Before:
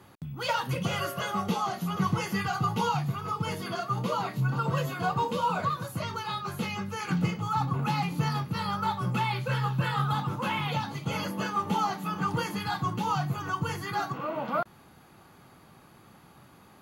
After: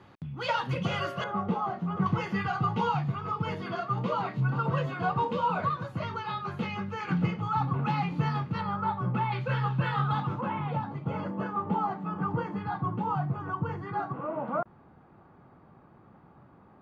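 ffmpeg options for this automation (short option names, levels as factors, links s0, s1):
-af "asetnsamples=n=441:p=0,asendcmd='1.24 lowpass f 1400;2.06 lowpass f 2700;8.61 lowpass f 1600;9.32 lowpass f 2800;10.41 lowpass f 1200',lowpass=3800"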